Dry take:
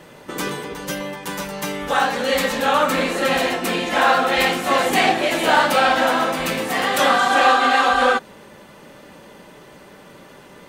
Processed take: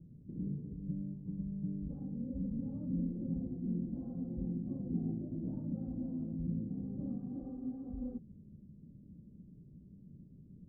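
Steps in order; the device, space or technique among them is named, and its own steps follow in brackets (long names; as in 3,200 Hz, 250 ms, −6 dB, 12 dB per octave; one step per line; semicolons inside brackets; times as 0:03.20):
the neighbour's flat through the wall (low-pass filter 210 Hz 24 dB per octave; parametric band 87 Hz +4 dB 0.99 octaves)
level −3.5 dB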